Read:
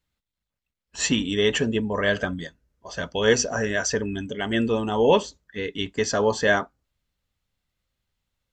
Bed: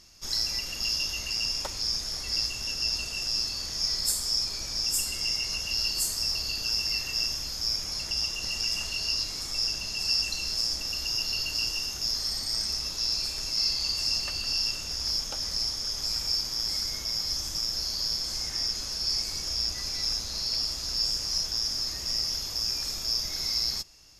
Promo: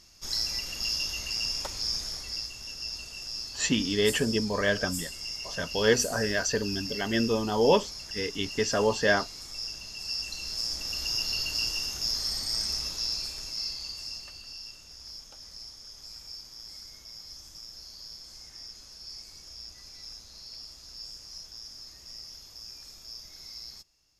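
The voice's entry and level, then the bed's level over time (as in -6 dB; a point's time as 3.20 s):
2.60 s, -3.5 dB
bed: 2.05 s -1.5 dB
2.46 s -8 dB
10.03 s -8 dB
11.06 s -0.5 dB
12.81 s -0.5 dB
14.58 s -15 dB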